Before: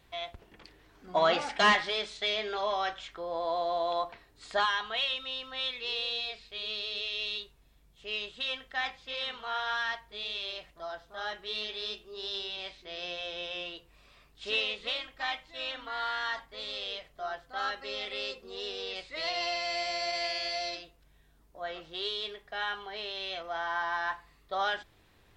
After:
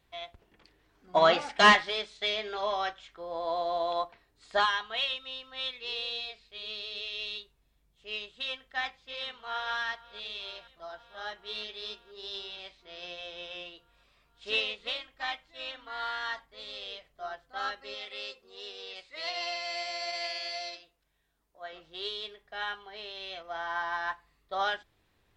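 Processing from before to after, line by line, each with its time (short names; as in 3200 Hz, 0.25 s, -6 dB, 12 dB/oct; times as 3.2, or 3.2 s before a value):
8.98–9.71 echo throw 0.48 s, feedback 80%, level -15 dB
17.94–21.73 low shelf 330 Hz -9.5 dB
whole clip: upward expander 1.5:1, over -45 dBFS; gain +5 dB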